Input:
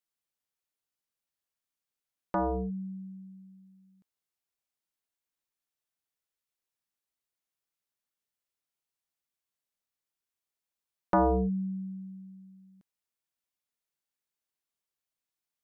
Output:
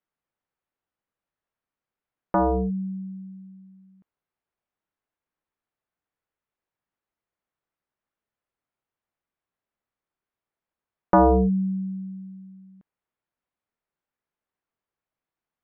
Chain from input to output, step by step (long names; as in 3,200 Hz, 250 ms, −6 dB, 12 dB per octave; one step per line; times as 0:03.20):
low-pass filter 1,700 Hz 12 dB per octave
level +8 dB